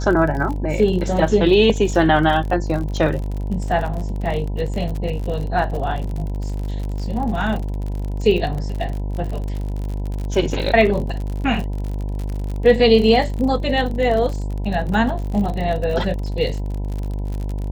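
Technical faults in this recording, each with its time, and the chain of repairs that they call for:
buzz 50 Hz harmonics 20 -24 dBFS
crackle 50/s -26 dBFS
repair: de-click; de-hum 50 Hz, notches 20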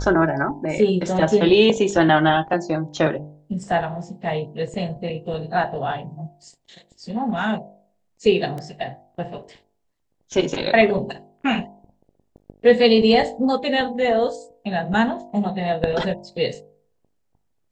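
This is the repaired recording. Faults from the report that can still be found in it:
none

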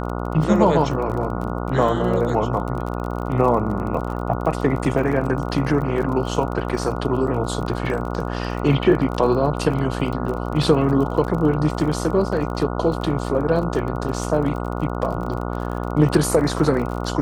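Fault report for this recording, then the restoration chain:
buzz 60 Hz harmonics 24 -26 dBFS
crackle 35/s -28 dBFS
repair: de-click; de-hum 60 Hz, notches 24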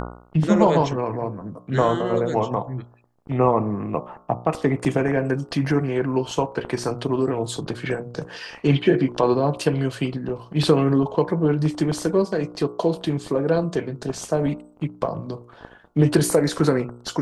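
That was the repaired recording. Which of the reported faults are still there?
none

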